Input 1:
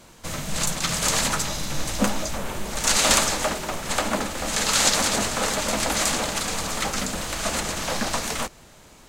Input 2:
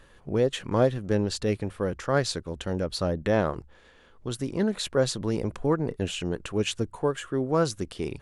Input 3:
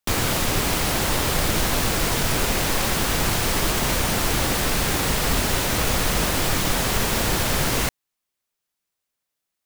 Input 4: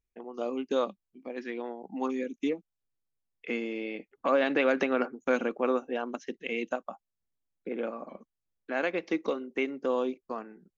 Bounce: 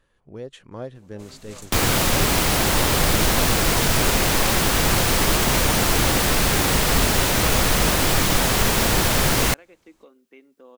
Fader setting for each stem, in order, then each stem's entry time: −17.5, −12.0, +3.0, −19.5 decibels; 0.95, 0.00, 1.65, 0.75 seconds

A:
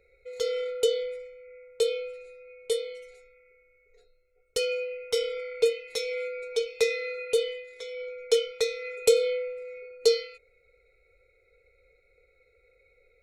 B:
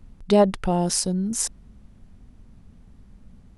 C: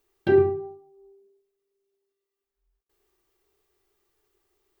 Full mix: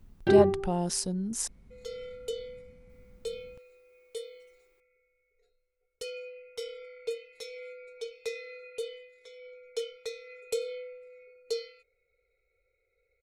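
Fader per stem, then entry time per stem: −11.5, −7.5, −2.5 decibels; 1.45, 0.00, 0.00 seconds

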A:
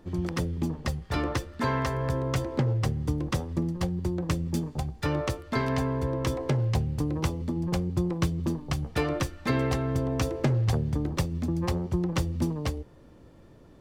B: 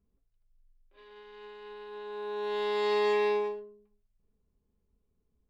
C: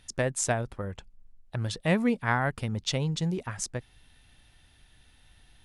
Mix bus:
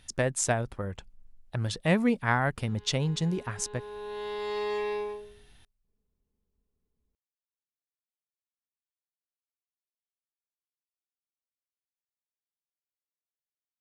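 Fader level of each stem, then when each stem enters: muted, −4.5 dB, +0.5 dB; muted, 1.65 s, 0.00 s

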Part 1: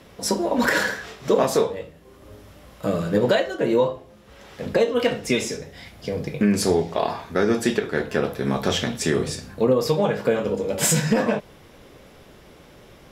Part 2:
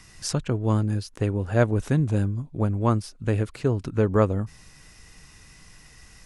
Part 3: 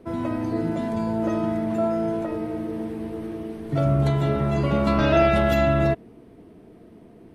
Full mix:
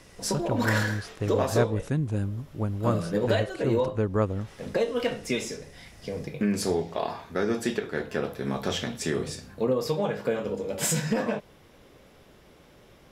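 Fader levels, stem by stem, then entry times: −6.5 dB, −5.0 dB, muted; 0.00 s, 0.00 s, muted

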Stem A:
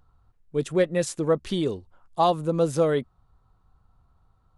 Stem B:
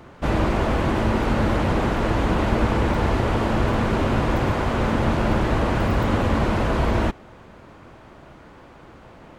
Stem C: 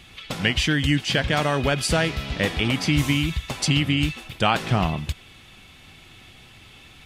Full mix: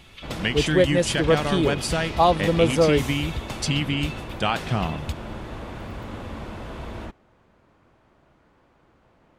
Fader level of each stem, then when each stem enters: +3.0, −14.5, −3.5 decibels; 0.00, 0.00, 0.00 seconds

